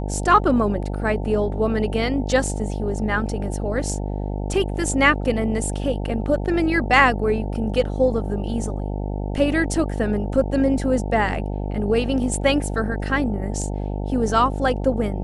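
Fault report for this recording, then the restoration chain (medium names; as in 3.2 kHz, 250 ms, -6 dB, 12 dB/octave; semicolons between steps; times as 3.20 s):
buzz 50 Hz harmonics 18 -26 dBFS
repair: de-hum 50 Hz, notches 18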